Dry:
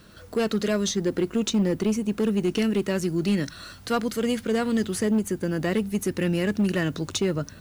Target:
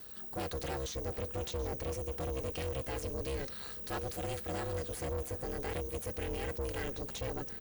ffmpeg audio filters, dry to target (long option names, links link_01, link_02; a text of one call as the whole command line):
ffmpeg -i in.wav -filter_complex "[0:a]aemphasis=mode=production:type=50fm,aeval=exprs='val(0)*sin(2*PI*67*n/s)':channel_layout=same,aecho=1:1:3.4:0.4,asoftclip=type=tanh:threshold=-28dB,acrossover=split=3400[link_01][link_02];[link_02]acompressor=threshold=-37dB:ratio=4:attack=1:release=60[link_03];[link_01][link_03]amix=inputs=2:normalize=0,aeval=exprs='val(0)*sin(2*PI*200*n/s)':channel_layout=same,asplit=2[link_04][link_05];[link_05]aecho=0:1:732|1464|2196:0.141|0.0537|0.0204[link_06];[link_04][link_06]amix=inputs=2:normalize=0,volume=-2dB" out.wav